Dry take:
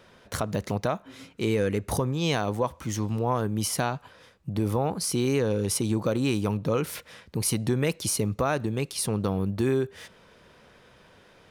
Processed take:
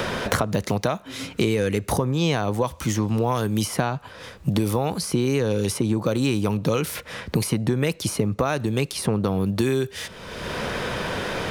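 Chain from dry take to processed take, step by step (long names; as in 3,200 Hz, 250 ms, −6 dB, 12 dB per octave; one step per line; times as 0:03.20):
multiband upward and downward compressor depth 100%
level +3 dB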